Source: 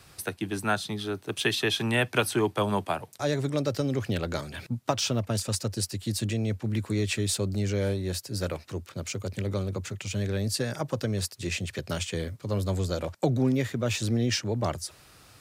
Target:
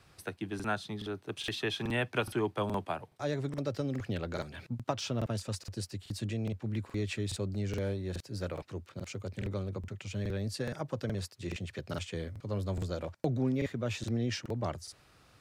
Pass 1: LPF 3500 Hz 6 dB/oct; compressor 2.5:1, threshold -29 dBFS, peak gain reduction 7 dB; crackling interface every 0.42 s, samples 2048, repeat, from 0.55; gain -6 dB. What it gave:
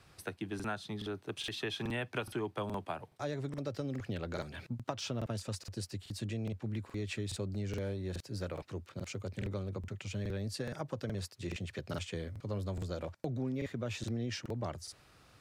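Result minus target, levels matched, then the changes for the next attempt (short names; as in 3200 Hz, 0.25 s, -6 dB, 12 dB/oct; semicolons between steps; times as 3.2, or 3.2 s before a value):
compressor: peak gain reduction +7 dB
remove: compressor 2.5:1, threshold -29 dBFS, peak gain reduction 7 dB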